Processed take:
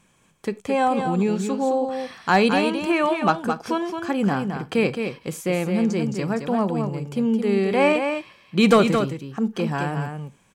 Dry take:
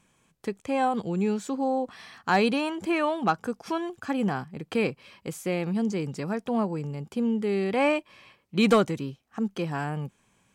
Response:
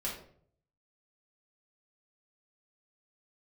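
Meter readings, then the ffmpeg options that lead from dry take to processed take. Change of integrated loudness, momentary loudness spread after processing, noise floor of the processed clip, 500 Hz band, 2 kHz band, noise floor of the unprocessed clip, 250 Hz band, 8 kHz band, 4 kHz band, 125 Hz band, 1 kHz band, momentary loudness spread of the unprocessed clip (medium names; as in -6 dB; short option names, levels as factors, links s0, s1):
+5.5 dB, 11 LU, -60 dBFS, +6.0 dB, +5.5 dB, -69 dBFS, +5.5 dB, +5.5 dB, +5.5 dB, +6.0 dB, +5.5 dB, 12 LU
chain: -filter_complex "[0:a]aecho=1:1:217:0.473,asplit=2[s0][s1];[1:a]atrim=start_sample=2205,atrim=end_sample=4410[s2];[s1][s2]afir=irnorm=-1:irlink=0,volume=0.15[s3];[s0][s3]amix=inputs=2:normalize=0,volume=1.58"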